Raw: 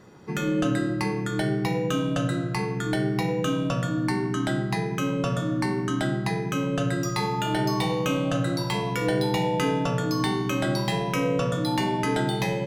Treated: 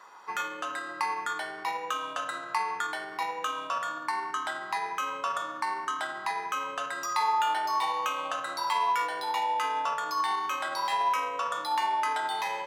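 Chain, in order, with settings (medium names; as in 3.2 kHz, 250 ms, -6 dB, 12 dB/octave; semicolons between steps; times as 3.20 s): peak limiter -21.5 dBFS, peak gain reduction 10 dB; resonant high-pass 1 kHz, resonance Q 3.8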